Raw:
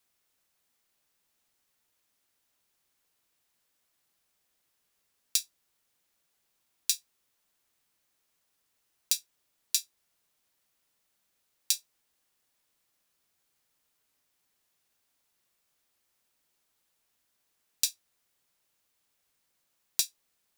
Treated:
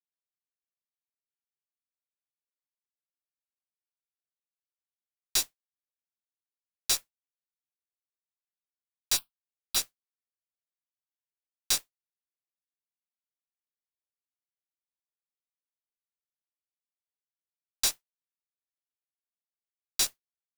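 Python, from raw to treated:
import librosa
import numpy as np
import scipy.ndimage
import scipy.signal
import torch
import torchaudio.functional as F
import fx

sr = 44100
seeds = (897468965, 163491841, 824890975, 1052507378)

y = fx.fuzz(x, sr, gain_db=40.0, gate_db=-47.0)
y = fx.mod_noise(y, sr, seeds[0], snr_db=12)
y = fx.fixed_phaser(y, sr, hz=1900.0, stages=6, at=(9.16, 9.75), fade=0.02)
y = F.gain(torch.from_numpy(y), -8.0).numpy()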